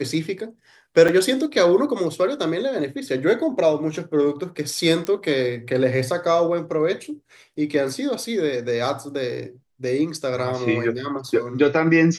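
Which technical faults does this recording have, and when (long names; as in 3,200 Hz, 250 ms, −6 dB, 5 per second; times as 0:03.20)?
0:01.08–0:01.09: drop-out 5.9 ms
0:05.05: click −14 dBFS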